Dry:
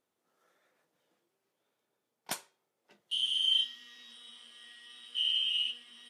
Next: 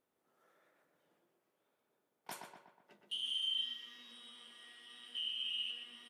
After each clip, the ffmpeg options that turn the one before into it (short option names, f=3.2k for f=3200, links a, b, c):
-filter_complex "[0:a]equalizer=f=5.5k:t=o:w=1.8:g=-7,alimiter=level_in=8.5dB:limit=-24dB:level=0:latency=1:release=79,volume=-8.5dB,asplit=2[a][b];[b]adelay=122,lowpass=f=2.6k:p=1,volume=-4dB,asplit=2[c][d];[d]adelay=122,lowpass=f=2.6k:p=1,volume=0.54,asplit=2[e][f];[f]adelay=122,lowpass=f=2.6k:p=1,volume=0.54,asplit=2[g][h];[h]adelay=122,lowpass=f=2.6k:p=1,volume=0.54,asplit=2[i][j];[j]adelay=122,lowpass=f=2.6k:p=1,volume=0.54,asplit=2[k][l];[l]adelay=122,lowpass=f=2.6k:p=1,volume=0.54,asplit=2[m][n];[n]adelay=122,lowpass=f=2.6k:p=1,volume=0.54[o];[a][c][e][g][i][k][m][o]amix=inputs=8:normalize=0"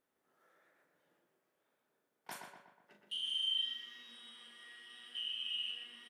-filter_complex "[0:a]equalizer=f=1.7k:t=o:w=0.57:g=5,asplit=2[a][b];[b]adelay=39,volume=-7dB[c];[a][c]amix=inputs=2:normalize=0,volume=-1.5dB"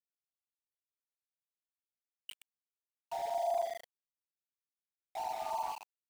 -af "lowpass=f=3.2k:t=q:w=0.5098,lowpass=f=3.2k:t=q:w=0.6013,lowpass=f=3.2k:t=q:w=0.9,lowpass=f=3.2k:t=q:w=2.563,afreqshift=-3800,afftfilt=real='re*gte(hypot(re,im),0.0158)':imag='im*gte(hypot(re,im),0.0158)':win_size=1024:overlap=0.75,aeval=exprs='val(0)*gte(abs(val(0)),0.00422)':c=same,volume=5dB"